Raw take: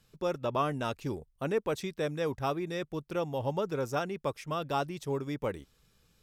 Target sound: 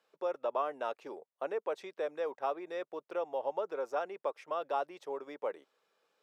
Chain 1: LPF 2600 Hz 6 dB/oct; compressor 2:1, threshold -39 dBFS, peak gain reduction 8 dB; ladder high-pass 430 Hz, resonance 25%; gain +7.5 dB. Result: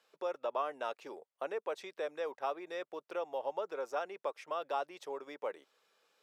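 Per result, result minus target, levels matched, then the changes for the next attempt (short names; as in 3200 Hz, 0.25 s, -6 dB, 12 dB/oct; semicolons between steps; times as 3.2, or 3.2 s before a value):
compressor: peak gain reduction +3.5 dB; 2000 Hz band +2.5 dB
change: compressor 2:1, threshold -33 dBFS, peak gain reduction 5 dB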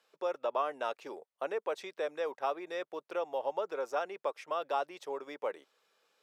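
2000 Hz band +2.5 dB
change: LPF 1100 Hz 6 dB/oct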